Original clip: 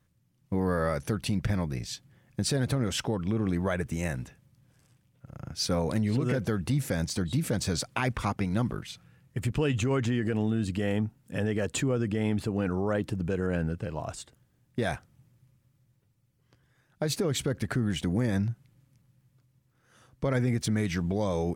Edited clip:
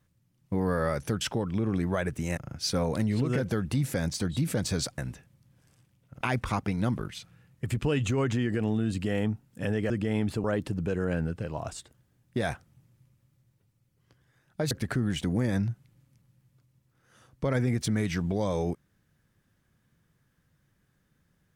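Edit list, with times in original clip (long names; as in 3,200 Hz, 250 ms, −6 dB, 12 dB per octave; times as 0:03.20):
0:01.21–0:02.94: remove
0:04.10–0:05.33: move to 0:07.94
0:11.63–0:12.00: remove
0:12.54–0:12.86: remove
0:17.13–0:17.51: remove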